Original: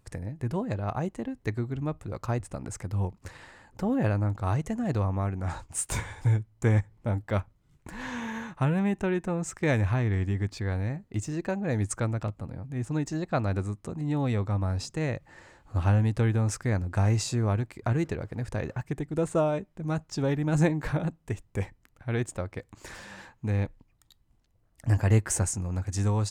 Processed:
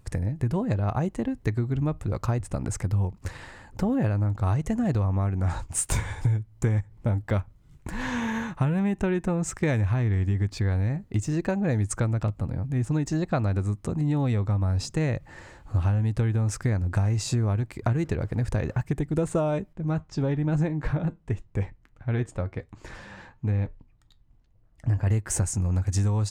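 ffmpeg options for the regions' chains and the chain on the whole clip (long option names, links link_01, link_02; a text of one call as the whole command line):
ffmpeg -i in.wav -filter_complex "[0:a]asettb=1/sr,asplit=3[link_01][link_02][link_03];[link_01]atrim=end=19.734[link_04];[link_02]atrim=start=19.73:end=25.07,asetpts=PTS-STARTPTS,afade=type=in:duration=0.004:curve=qsin,afade=type=out:start_time=5.336:duration=0.004:curve=qsin,aemphasis=mode=reproduction:type=50fm,flanger=delay=5.8:depth=1.9:regen=-76:speed=1:shape=triangular[link_05];[link_03]atrim=start=25.066[link_06];[link_04][link_05]acrossfade=duration=0.004:curve1=hsin:curve2=qsin[link_07];[link_07][link_06]acrossfade=duration=0.004:curve1=qsin:curve2=hsin,lowshelf=frequency=140:gain=7.5,acompressor=threshold=-26dB:ratio=6,volume=5dB" out.wav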